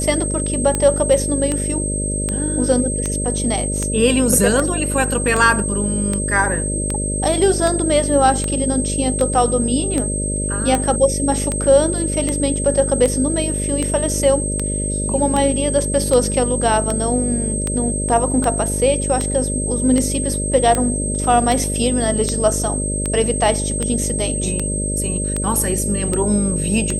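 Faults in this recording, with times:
buzz 50 Hz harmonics 12 -23 dBFS
tick 78 rpm -7 dBFS
whine 8.3 kHz -23 dBFS

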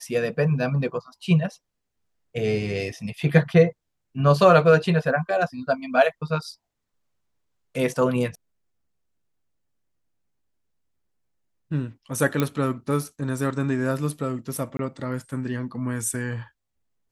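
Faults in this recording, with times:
12.40 s: pop -9 dBFS
14.77–14.79 s: dropout 22 ms

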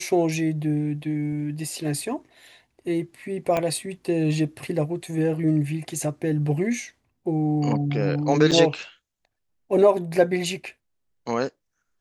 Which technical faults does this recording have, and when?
3.57 s: pop -11 dBFS
8.51–8.52 s: dropout 6.6 ms

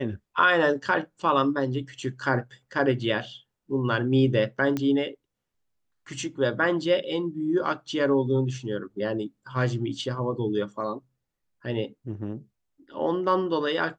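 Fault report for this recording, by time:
4.77 s: pop -15 dBFS

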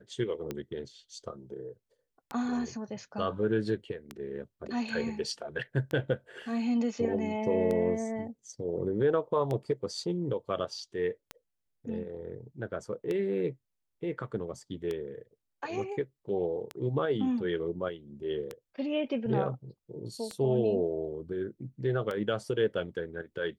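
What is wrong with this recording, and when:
tick 33 1/3 rpm -21 dBFS

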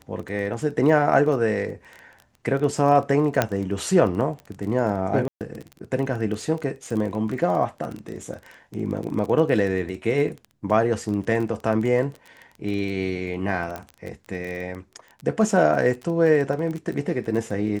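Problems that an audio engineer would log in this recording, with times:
crackle 18 per s -29 dBFS
3.42 s: pop -5 dBFS
5.28–5.41 s: dropout 128 ms
13.76 s: pop -18 dBFS

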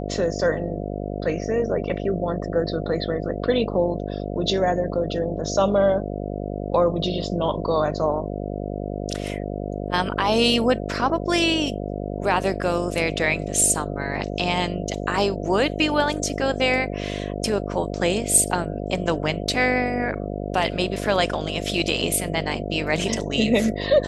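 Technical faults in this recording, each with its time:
buzz 50 Hz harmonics 14 -29 dBFS

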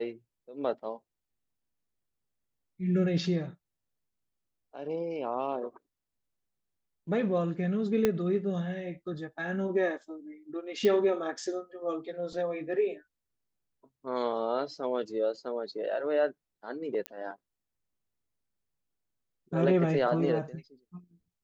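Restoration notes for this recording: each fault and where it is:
8.05 s: pop -12 dBFS
10.85 s: pop -16 dBFS
17.06 s: pop -18 dBFS

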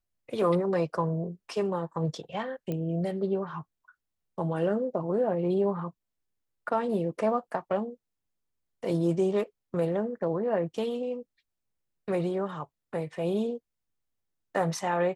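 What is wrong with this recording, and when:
2.72 s: pop -21 dBFS

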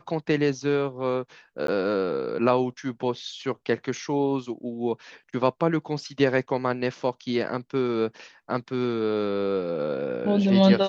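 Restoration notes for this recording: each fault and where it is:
1.67–1.68 s: dropout 13 ms

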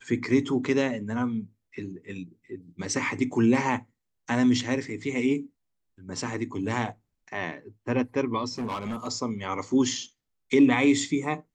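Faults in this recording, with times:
8.58–9.08 s: clipped -27.5 dBFS

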